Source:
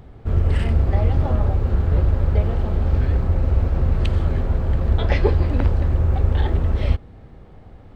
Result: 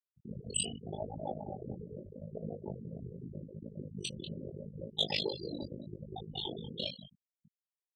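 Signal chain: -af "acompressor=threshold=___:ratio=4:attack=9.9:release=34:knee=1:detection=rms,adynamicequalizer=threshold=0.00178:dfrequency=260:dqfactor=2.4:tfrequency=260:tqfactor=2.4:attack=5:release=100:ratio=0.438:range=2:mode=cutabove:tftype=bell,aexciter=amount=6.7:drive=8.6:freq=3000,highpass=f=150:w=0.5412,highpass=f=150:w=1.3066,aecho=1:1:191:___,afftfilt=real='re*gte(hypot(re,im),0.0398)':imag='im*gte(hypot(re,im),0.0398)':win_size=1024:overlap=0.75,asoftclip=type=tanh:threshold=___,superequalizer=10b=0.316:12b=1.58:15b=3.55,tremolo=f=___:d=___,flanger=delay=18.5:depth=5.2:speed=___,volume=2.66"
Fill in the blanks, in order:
0.0251, 0.422, 0.141, 52, 0.919, 0.8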